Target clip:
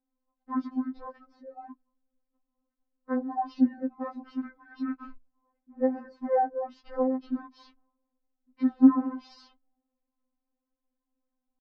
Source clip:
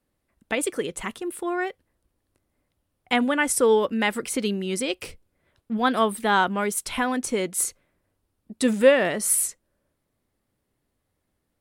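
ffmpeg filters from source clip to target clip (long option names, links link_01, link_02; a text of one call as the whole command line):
ffmpeg -i in.wav -af "asetrate=22696,aresample=44100,atempo=1.94306,lowpass=1000,afftfilt=real='re*3.46*eq(mod(b,12),0)':imag='im*3.46*eq(mod(b,12),0)':win_size=2048:overlap=0.75,volume=-3dB" out.wav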